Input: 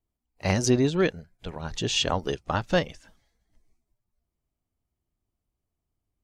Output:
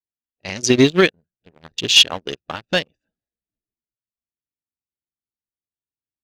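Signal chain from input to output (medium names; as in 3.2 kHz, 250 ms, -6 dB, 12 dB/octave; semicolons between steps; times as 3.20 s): local Wiener filter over 41 samples; frequency weighting D; 0.70–2.89 s: waveshaping leveller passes 1; loudness maximiser +11.5 dB; upward expansion 2.5:1, over -25 dBFS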